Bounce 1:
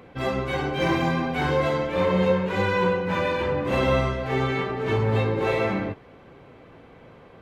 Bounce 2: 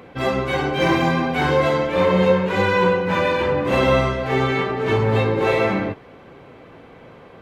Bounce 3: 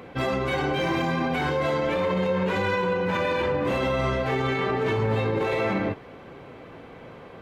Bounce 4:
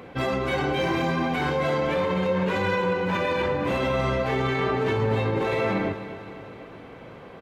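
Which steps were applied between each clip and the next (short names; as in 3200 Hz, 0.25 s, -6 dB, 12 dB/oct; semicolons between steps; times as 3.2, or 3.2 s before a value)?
low shelf 110 Hz -5.5 dB; gain +5.5 dB
limiter -17 dBFS, peak gain reduction 11 dB
feedback echo 0.253 s, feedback 59%, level -13 dB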